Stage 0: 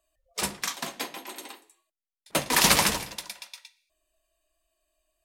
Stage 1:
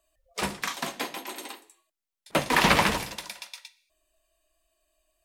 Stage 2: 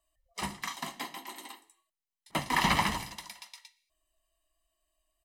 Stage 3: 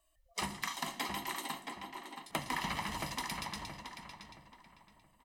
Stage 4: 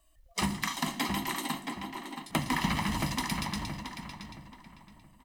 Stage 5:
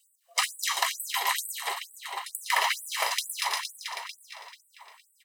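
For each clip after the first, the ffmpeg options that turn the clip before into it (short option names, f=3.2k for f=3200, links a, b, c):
-filter_complex "[0:a]acrossover=split=3300[a][b];[b]acompressor=threshold=-37dB:ratio=4:attack=1:release=60[c];[a][c]amix=inputs=2:normalize=0,volume=3dB"
-af "aecho=1:1:1:0.61,volume=-7.5dB"
-filter_complex "[0:a]acompressor=threshold=-37dB:ratio=16,asplit=2[a][b];[b]adelay=673,lowpass=f=2.5k:p=1,volume=-4dB,asplit=2[c][d];[d]adelay=673,lowpass=f=2.5k:p=1,volume=0.33,asplit=2[e][f];[f]adelay=673,lowpass=f=2.5k:p=1,volume=0.33,asplit=2[g][h];[h]adelay=673,lowpass=f=2.5k:p=1,volume=0.33[i];[c][e][g][i]amix=inputs=4:normalize=0[j];[a][j]amix=inputs=2:normalize=0,volume=4dB"
-filter_complex "[0:a]lowshelf=f=340:t=q:w=1.5:g=6,asplit=2[a][b];[b]acrusher=bits=3:mode=log:mix=0:aa=0.000001,volume=-8.5dB[c];[a][c]amix=inputs=2:normalize=0,volume=2.5dB"
-filter_complex "[0:a]asplit=2[a][b];[b]aecho=0:1:212.8|274.1:0.316|0.282[c];[a][c]amix=inputs=2:normalize=0,afftfilt=real='re*gte(b*sr/1024,370*pow(7900/370,0.5+0.5*sin(2*PI*2.2*pts/sr)))':imag='im*gte(b*sr/1024,370*pow(7900/370,0.5+0.5*sin(2*PI*2.2*pts/sr)))':win_size=1024:overlap=0.75,volume=7.5dB"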